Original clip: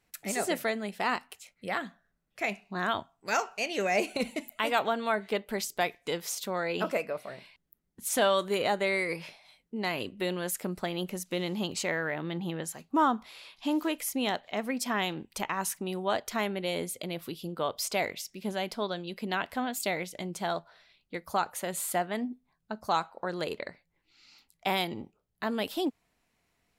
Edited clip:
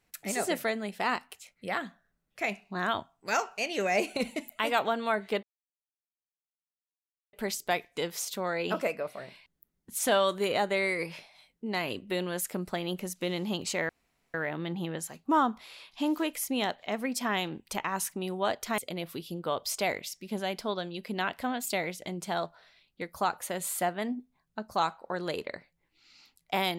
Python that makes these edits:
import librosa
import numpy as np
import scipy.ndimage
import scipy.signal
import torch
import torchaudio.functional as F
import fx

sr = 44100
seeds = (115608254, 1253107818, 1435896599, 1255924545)

y = fx.edit(x, sr, fx.insert_silence(at_s=5.43, length_s=1.9),
    fx.insert_room_tone(at_s=11.99, length_s=0.45),
    fx.cut(start_s=16.43, length_s=0.48), tone=tone)